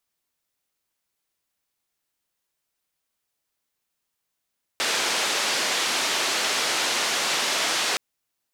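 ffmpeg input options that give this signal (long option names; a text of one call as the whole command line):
ffmpeg -f lavfi -i "anoisesrc=color=white:duration=3.17:sample_rate=44100:seed=1,highpass=frequency=320,lowpass=frequency=5400,volume=-13.6dB" out.wav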